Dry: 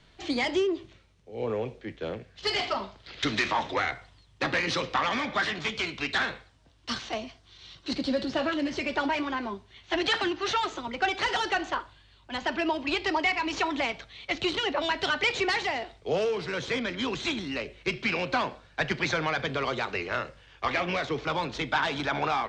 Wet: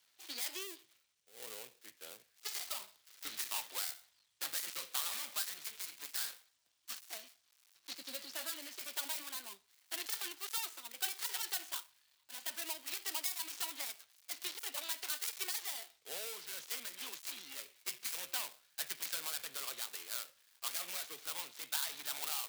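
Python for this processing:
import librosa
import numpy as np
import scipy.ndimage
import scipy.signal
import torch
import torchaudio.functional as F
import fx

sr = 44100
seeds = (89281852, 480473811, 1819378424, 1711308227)

y = fx.dead_time(x, sr, dead_ms=0.2)
y = np.diff(y, prepend=0.0)
y = F.gain(torch.from_numpy(y), -1.0).numpy()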